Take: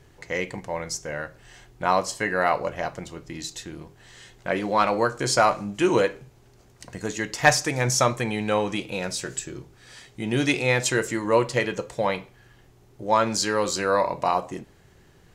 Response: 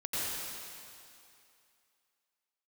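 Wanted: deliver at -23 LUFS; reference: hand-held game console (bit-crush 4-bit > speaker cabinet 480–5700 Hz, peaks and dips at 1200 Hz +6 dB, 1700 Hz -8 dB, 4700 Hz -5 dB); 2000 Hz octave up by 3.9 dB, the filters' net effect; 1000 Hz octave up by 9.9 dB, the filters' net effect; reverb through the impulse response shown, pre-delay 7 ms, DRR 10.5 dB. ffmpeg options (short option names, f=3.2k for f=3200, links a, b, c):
-filter_complex "[0:a]equalizer=f=1k:t=o:g=8.5,equalizer=f=2k:t=o:g=6.5,asplit=2[a][b];[1:a]atrim=start_sample=2205,adelay=7[c];[b][c]afir=irnorm=-1:irlink=0,volume=-17dB[d];[a][d]amix=inputs=2:normalize=0,acrusher=bits=3:mix=0:aa=0.000001,highpass=480,equalizer=f=1.2k:t=q:w=4:g=6,equalizer=f=1.7k:t=q:w=4:g=-8,equalizer=f=4.7k:t=q:w=4:g=-5,lowpass=f=5.7k:w=0.5412,lowpass=f=5.7k:w=1.3066,volume=-5dB"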